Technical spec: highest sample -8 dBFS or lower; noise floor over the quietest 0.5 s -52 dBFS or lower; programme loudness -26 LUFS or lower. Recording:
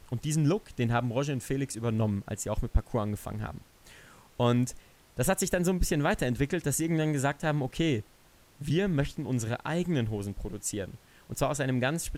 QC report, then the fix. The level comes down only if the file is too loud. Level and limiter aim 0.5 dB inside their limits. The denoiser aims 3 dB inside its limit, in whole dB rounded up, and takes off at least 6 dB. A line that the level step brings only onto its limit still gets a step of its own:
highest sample -11.5 dBFS: pass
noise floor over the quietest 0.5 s -59 dBFS: pass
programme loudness -30.0 LUFS: pass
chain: none needed

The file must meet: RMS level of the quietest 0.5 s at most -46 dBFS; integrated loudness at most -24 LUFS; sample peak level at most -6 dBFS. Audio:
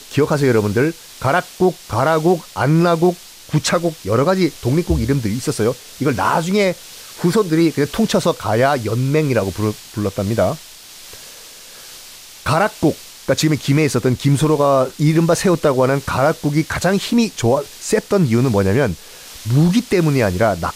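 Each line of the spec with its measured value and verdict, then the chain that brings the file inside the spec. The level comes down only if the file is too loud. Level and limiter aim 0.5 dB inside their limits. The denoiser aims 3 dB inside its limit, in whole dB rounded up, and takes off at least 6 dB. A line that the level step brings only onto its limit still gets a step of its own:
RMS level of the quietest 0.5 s -39 dBFS: fail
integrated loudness -17.0 LUFS: fail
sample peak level -4.5 dBFS: fail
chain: trim -7.5 dB

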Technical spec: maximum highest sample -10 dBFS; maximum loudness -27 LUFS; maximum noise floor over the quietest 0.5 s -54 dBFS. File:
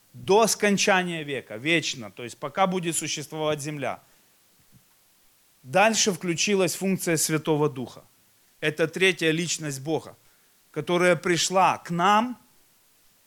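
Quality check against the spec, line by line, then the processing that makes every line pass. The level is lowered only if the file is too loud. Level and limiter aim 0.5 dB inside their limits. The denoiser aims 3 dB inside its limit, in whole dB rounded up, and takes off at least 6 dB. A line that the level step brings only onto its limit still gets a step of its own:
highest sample -6.5 dBFS: fail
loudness -24.0 LUFS: fail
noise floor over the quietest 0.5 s -61 dBFS: pass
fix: trim -3.5 dB; peak limiter -10.5 dBFS

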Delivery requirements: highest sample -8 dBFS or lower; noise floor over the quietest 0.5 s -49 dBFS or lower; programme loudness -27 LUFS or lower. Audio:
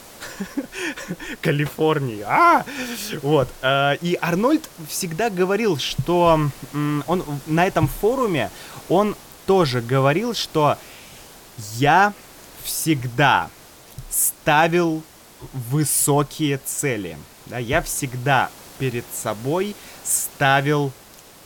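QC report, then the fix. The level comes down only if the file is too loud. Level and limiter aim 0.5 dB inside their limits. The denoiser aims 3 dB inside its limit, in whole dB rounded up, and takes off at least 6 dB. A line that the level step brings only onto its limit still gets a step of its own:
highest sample -4.0 dBFS: fail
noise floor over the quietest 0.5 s -46 dBFS: fail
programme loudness -20.5 LUFS: fail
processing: trim -7 dB

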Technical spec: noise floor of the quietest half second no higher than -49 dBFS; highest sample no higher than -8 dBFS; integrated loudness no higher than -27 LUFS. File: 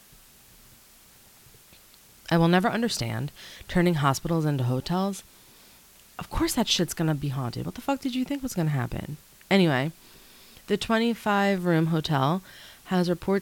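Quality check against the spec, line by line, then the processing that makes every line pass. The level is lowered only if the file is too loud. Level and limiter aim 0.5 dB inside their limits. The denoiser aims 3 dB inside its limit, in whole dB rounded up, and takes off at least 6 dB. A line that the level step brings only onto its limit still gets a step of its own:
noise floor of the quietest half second -54 dBFS: pass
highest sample -7.0 dBFS: fail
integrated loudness -26.0 LUFS: fail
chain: trim -1.5 dB

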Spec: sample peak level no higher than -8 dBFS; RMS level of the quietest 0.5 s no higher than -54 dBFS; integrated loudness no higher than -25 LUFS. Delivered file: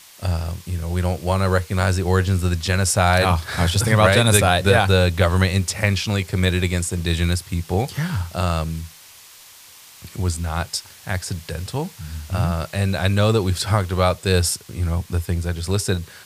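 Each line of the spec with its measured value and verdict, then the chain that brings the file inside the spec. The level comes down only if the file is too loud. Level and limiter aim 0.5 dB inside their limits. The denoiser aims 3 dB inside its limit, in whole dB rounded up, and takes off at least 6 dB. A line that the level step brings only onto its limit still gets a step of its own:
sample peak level -1.5 dBFS: fail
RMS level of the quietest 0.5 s -45 dBFS: fail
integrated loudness -20.5 LUFS: fail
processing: noise reduction 7 dB, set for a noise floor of -45 dBFS; trim -5 dB; peak limiter -8.5 dBFS

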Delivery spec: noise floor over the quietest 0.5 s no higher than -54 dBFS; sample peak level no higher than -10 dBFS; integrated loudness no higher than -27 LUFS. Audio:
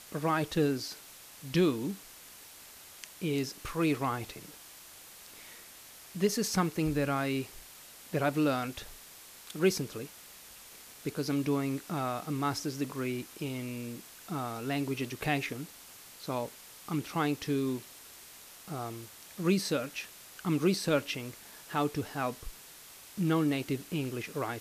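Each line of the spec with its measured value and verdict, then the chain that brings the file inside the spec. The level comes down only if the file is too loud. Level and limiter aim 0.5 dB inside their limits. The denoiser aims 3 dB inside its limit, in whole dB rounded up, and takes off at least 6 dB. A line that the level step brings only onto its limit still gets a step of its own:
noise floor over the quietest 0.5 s -52 dBFS: fail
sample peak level -15.0 dBFS: pass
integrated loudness -33.0 LUFS: pass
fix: noise reduction 6 dB, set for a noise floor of -52 dBFS

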